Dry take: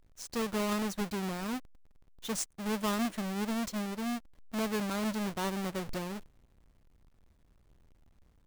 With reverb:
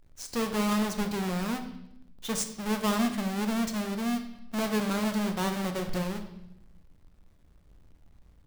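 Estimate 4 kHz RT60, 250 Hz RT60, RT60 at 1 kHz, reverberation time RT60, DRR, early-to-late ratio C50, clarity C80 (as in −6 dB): 0.80 s, 1.3 s, 0.75 s, 0.80 s, 6.0 dB, 9.5 dB, 11.5 dB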